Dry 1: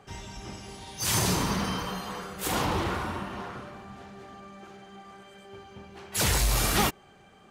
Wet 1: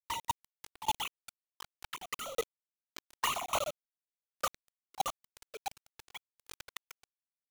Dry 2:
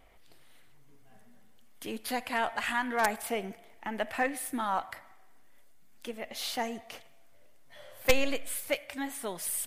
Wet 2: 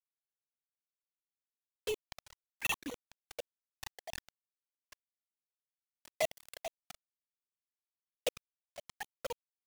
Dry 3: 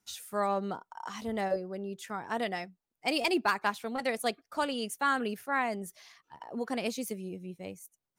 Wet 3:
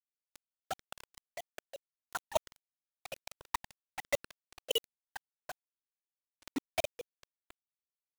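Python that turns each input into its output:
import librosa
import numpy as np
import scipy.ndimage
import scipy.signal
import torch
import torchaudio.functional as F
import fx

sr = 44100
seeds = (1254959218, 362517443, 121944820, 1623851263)

y = fx.sine_speech(x, sr)
y = fx.over_compress(y, sr, threshold_db=-35.0, ratio=-0.5)
y = fx.dynamic_eq(y, sr, hz=380.0, q=4.1, threshold_db=-46.0, ratio=4.0, max_db=-4)
y = fx.level_steps(y, sr, step_db=11)
y = fx.quant_dither(y, sr, seeds[0], bits=6, dither='none')
y = fx.env_flanger(y, sr, rest_ms=3.5, full_db=-33.0)
y = fx.tremolo_decay(y, sr, direction='decaying', hz=3.4, depth_db=19)
y = y * librosa.db_to_amplitude(10.0)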